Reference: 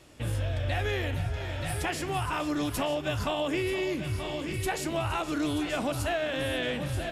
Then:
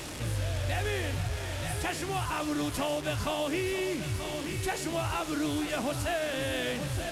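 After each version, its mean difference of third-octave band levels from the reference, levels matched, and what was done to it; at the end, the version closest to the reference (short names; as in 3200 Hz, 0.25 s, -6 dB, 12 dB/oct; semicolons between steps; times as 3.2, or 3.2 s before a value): 3.0 dB: delta modulation 64 kbps, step -32 dBFS; gain -1.5 dB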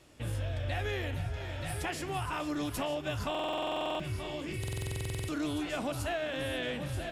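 1.5 dB: stuck buffer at 3.3/4.59, samples 2048, times 14; gain -4.5 dB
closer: second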